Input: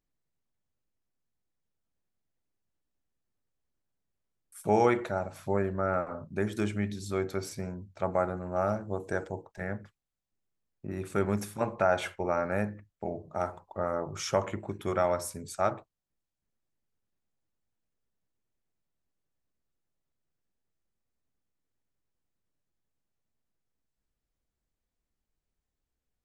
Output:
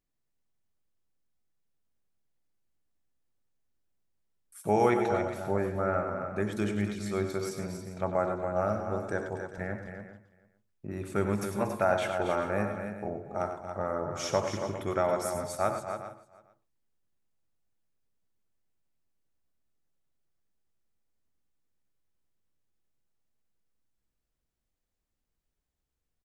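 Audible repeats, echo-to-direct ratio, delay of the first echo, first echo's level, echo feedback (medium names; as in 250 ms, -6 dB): 7, -4.0 dB, 94 ms, -11.0 dB, no regular repeats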